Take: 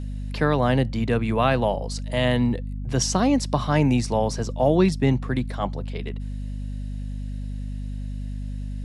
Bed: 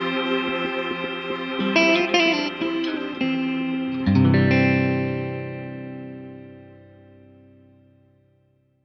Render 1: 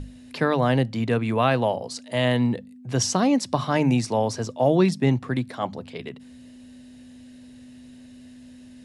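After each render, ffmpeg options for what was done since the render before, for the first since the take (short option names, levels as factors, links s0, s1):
-af "bandreject=f=50:t=h:w=6,bandreject=f=100:t=h:w=6,bandreject=f=150:t=h:w=6,bandreject=f=200:t=h:w=6"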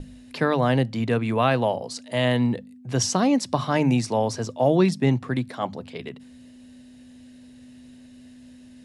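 -af "bandreject=f=50:t=h:w=6,bandreject=f=100:t=h:w=6,agate=range=0.0224:threshold=0.00631:ratio=3:detection=peak"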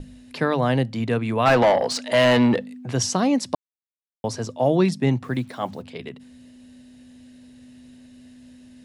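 -filter_complex "[0:a]asplit=3[s0][s1][s2];[s0]afade=t=out:st=1.45:d=0.02[s3];[s1]asplit=2[s4][s5];[s5]highpass=f=720:p=1,volume=14.1,asoftclip=type=tanh:threshold=0.422[s6];[s4][s6]amix=inputs=2:normalize=0,lowpass=f=2500:p=1,volume=0.501,afade=t=in:st=1.45:d=0.02,afade=t=out:st=2.9:d=0.02[s7];[s2]afade=t=in:st=2.9:d=0.02[s8];[s3][s7][s8]amix=inputs=3:normalize=0,asplit=3[s9][s10][s11];[s9]afade=t=out:st=5.23:d=0.02[s12];[s10]acrusher=bits=8:mix=0:aa=0.5,afade=t=in:st=5.23:d=0.02,afade=t=out:st=5.81:d=0.02[s13];[s11]afade=t=in:st=5.81:d=0.02[s14];[s12][s13][s14]amix=inputs=3:normalize=0,asplit=3[s15][s16][s17];[s15]atrim=end=3.55,asetpts=PTS-STARTPTS,afade=t=out:st=3.546:d=0.004:c=hsin[s18];[s16]atrim=start=3.55:end=4.24,asetpts=PTS-STARTPTS,volume=0[s19];[s17]atrim=start=4.24,asetpts=PTS-STARTPTS,afade=t=in:d=0.004:c=hsin[s20];[s18][s19][s20]concat=n=3:v=0:a=1"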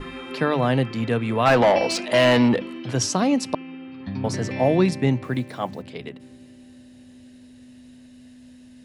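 -filter_complex "[1:a]volume=0.237[s0];[0:a][s0]amix=inputs=2:normalize=0"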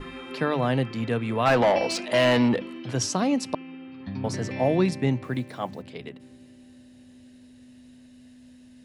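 -af "volume=0.668"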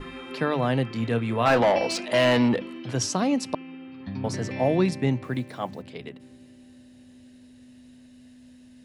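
-filter_complex "[0:a]asettb=1/sr,asplit=3[s0][s1][s2];[s0]atrim=end=0.914[s3];[s1]atrim=start=0.91:end=1.6,asetpts=PTS-STARTPTS,afade=t=in:d=0.004:c=qsin,afade=t=out:st=0.686:d=0.004:c=qsin,asplit=2[s4][s5];[s5]adelay=26,volume=0.316[s6];[s4][s6]amix=inputs=2:normalize=0,atrim=end_sample=30429[s7];[s2]atrim=start=1.596[s8];[s3][s7]acrossfade=d=0.004:c1=hsin:c2=qsin[s9];[s9][s8]acrossfade=d=0.004:c1=qsin:c2=hsin"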